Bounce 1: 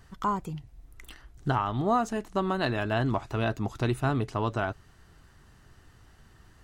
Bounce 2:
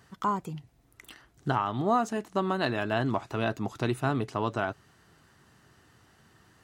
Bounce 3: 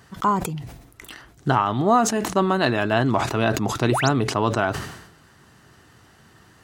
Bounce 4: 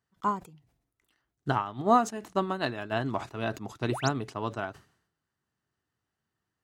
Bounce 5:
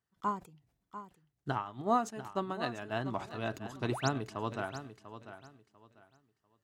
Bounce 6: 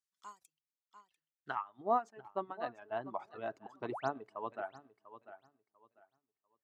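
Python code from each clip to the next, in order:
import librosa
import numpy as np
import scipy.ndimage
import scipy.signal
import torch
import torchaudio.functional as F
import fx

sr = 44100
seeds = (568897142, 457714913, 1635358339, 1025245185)

y1 = scipy.signal.sosfilt(scipy.signal.butter(2, 130.0, 'highpass', fs=sr, output='sos'), x)
y2 = fx.spec_paint(y1, sr, seeds[0], shape='rise', start_s=3.89, length_s=0.2, low_hz=250.0, high_hz=7900.0, level_db=-35.0)
y2 = fx.sustainer(y2, sr, db_per_s=66.0)
y2 = y2 * 10.0 ** (7.5 / 20.0)
y3 = fx.upward_expand(y2, sr, threshold_db=-34.0, expansion=2.5)
y3 = y3 * 10.0 ** (-3.0 / 20.0)
y4 = fx.rider(y3, sr, range_db=10, speed_s=2.0)
y4 = fx.echo_feedback(y4, sr, ms=694, feedback_pct=24, wet_db=-12.0)
y4 = y4 * 10.0 ** (-6.5 / 20.0)
y5 = fx.dereverb_blind(y4, sr, rt60_s=1.8)
y5 = fx.filter_sweep_bandpass(y5, sr, from_hz=7000.0, to_hz=720.0, start_s=0.79, end_s=1.86, q=1.0)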